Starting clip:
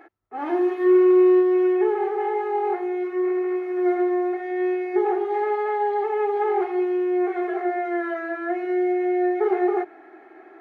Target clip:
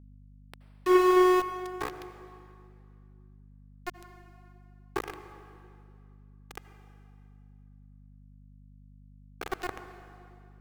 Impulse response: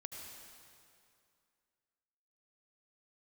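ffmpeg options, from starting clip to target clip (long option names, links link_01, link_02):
-filter_complex "[0:a]aeval=exprs='0.316*(cos(1*acos(clip(val(0)/0.316,-1,1)))-cos(1*PI/2))+0.141*(cos(3*acos(clip(val(0)/0.316,-1,1)))-cos(3*PI/2))+0.00251*(cos(5*acos(clip(val(0)/0.316,-1,1)))-cos(5*PI/2))+0.0126*(cos(8*acos(clip(val(0)/0.316,-1,1)))-cos(8*PI/2))':channel_layout=same,aeval=exprs='val(0)*gte(abs(val(0)),0.0596)':channel_layout=same,aeval=exprs='val(0)+0.00501*(sin(2*PI*50*n/s)+sin(2*PI*2*50*n/s)/2+sin(2*PI*3*50*n/s)/3+sin(2*PI*4*50*n/s)/4+sin(2*PI*5*50*n/s)/5)':channel_layout=same,asplit=2[link_01][link_02];[1:a]atrim=start_sample=2205,lowshelf=frequency=200:gain=-10,highshelf=frequency=2100:gain=-10.5[link_03];[link_02][link_03]afir=irnorm=-1:irlink=0,volume=4dB[link_04];[link_01][link_04]amix=inputs=2:normalize=0,volume=-7dB"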